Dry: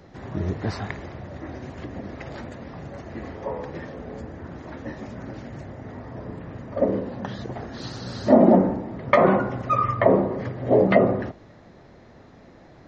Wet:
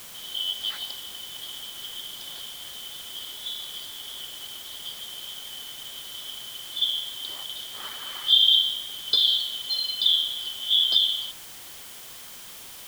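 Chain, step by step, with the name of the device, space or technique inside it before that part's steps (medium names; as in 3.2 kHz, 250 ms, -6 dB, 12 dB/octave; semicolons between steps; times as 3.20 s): split-band scrambled radio (four frequency bands reordered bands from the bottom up 3412; band-pass 330–3000 Hz; white noise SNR 14 dB)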